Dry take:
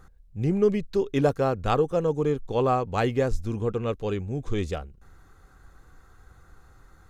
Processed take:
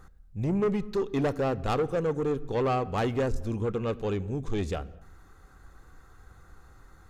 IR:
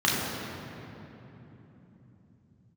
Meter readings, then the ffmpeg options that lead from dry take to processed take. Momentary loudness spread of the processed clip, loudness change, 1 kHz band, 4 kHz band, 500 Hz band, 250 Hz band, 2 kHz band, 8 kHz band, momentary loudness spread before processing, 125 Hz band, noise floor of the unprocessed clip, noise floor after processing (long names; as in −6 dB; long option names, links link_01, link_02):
5 LU, −3.0 dB, −3.5 dB, −2.5 dB, −3.5 dB, −2.0 dB, −2.5 dB, can't be measured, 7 LU, −3.0 dB, −55 dBFS, −55 dBFS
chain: -filter_complex "[0:a]asoftclip=type=tanh:threshold=-22dB,asplit=2[link_01][link_02];[1:a]atrim=start_sample=2205,afade=type=out:start_time=0.3:duration=0.01,atrim=end_sample=13671[link_03];[link_02][link_03]afir=irnorm=-1:irlink=0,volume=-31dB[link_04];[link_01][link_04]amix=inputs=2:normalize=0"